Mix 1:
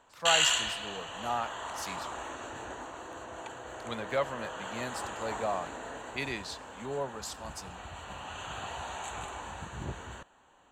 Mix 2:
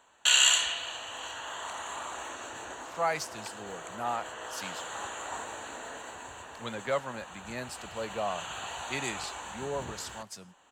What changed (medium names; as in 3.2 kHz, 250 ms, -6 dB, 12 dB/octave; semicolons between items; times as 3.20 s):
speech: entry +2.75 s; background: add tilt EQ +2 dB/octave